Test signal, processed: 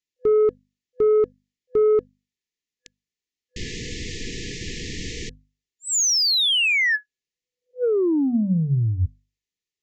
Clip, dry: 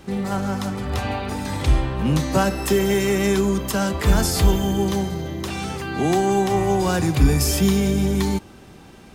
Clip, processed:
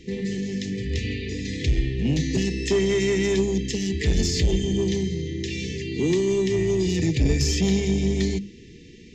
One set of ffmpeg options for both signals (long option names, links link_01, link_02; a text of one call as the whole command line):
ffmpeg -i in.wav -af "aresample=16000,aresample=44100,afftfilt=real='re*(1-between(b*sr/4096,500,1700))':imag='im*(1-between(b*sr/4096,500,1700))':win_size=4096:overlap=0.75,asoftclip=type=tanh:threshold=-12.5dB,bandreject=frequency=50:width_type=h:width=6,bandreject=frequency=100:width_type=h:width=6,bandreject=frequency=150:width_type=h:width=6,bandreject=frequency=200:width_type=h:width=6,bandreject=frequency=250:width_type=h:width=6" out.wav